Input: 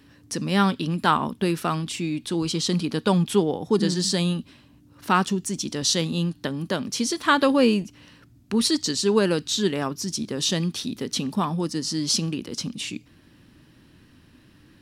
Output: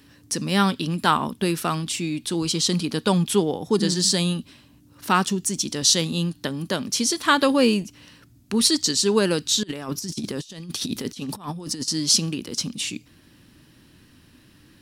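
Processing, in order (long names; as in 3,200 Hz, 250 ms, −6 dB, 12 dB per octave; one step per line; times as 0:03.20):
high-shelf EQ 4,200 Hz +8 dB
0:09.63–0:11.88: compressor whose output falls as the input rises −30 dBFS, ratio −0.5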